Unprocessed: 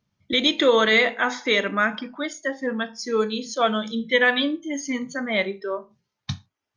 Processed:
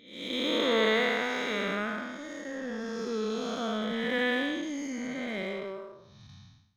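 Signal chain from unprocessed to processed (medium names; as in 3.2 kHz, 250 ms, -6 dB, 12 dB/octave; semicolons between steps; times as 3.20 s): spectral blur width 403 ms; in parallel at -4 dB: crossover distortion -38 dBFS; on the sum: trim -6 dB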